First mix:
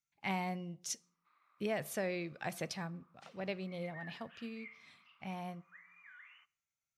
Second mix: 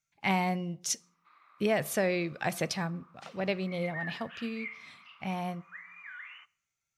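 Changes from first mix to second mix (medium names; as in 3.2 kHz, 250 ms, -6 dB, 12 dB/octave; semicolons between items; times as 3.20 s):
speech +8.5 dB; background +11.5 dB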